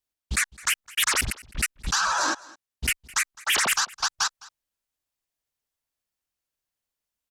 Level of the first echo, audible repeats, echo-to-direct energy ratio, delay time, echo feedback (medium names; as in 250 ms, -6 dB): -22.0 dB, 1, -22.0 dB, 210 ms, no regular repeats